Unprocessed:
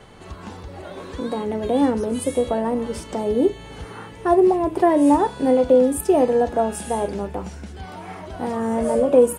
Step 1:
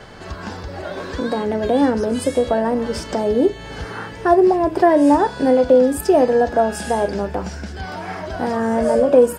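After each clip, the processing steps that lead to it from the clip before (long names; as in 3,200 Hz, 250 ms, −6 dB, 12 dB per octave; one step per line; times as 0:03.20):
thirty-one-band graphic EQ 630 Hz +4 dB, 1,600 Hz +8 dB, 5,000 Hz +9 dB, 10,000 Hz −8 dB
in parallel at −2 dB: downward compressor, threshold −25 dBFS, peak gain reduction 15.5 dB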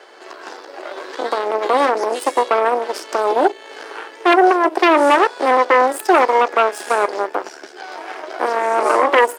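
harmonic generator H 6 −6 dB, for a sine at −1.5 dBFS
Chebyshev high-pass filter 340 Hz, order 4
level −2 dB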